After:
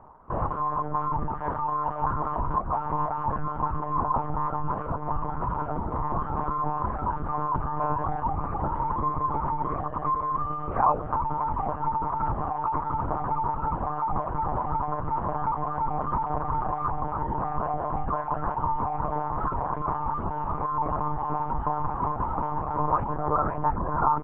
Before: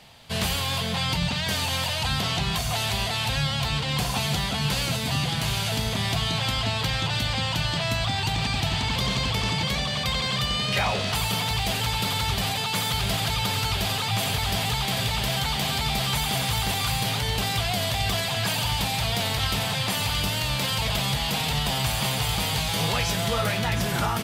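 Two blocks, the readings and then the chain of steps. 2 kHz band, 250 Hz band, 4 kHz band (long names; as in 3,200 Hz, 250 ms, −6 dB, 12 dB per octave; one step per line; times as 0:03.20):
−16.5 dB, −3.5 dB, below −40 dB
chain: reverb reduction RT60 0.92 s
Chebyshev low-pass filter 1,300 Hz, order 4
parametric band 1,000 Hz +14.5 dB 0.44 octaves
one-pitch LPC vocoder at 8 kHz 150 Hz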